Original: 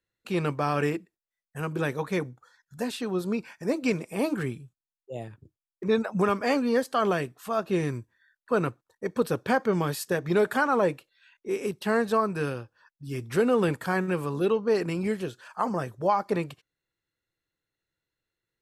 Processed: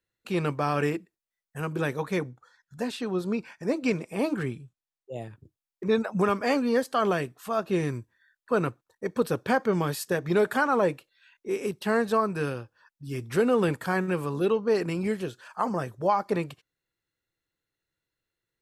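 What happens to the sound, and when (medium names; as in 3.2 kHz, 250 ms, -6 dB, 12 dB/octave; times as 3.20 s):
2.20–5.16 s: treble shelf 11 kHz -11.5 dB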